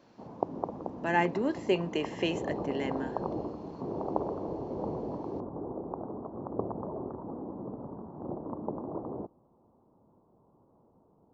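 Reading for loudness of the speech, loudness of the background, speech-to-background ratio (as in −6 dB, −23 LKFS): −32.0 LKFS, −38.0 LKFS, 6.0 dB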